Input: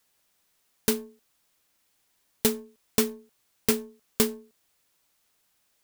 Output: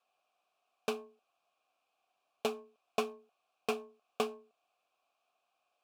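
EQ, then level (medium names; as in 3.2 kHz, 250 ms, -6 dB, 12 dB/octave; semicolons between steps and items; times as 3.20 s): vowel filter a; peaking EQ 2.1 kHz -3.5 dB 0.33 oct; +9.0 dB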